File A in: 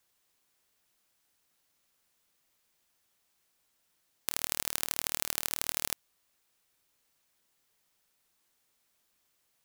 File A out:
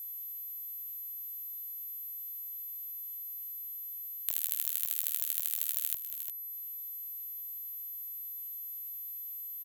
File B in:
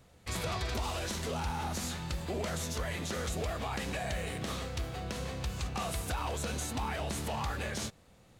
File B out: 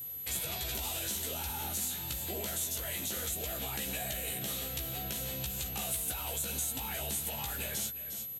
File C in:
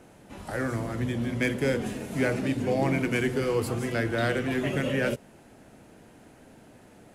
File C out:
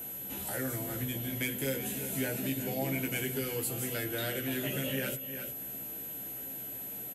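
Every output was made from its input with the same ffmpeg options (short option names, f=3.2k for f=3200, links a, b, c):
-filter_complex "[0:a]asplit=2[a][b];[b]aecho=0:1:355:0.168[c];[a][c]amix=inputs=2:normalize=0,aexciter=amount=1.8:drive=2.2:freq=2.8k,highpass=69,highshelf=f=3.6k:g=9.5,acompressor=threshold=-42dB:ratio=2,equalizer=f=1.1k:t=o:w=0.22:g=-11,asplit=2[d][e];[e]adelay=15,volume=-4dB[f];[d][f]amix=inputs=2:normalize=0,aeval=exprs='val(0)+0.0112*sin(2*PI*12000*n/s)':c=same"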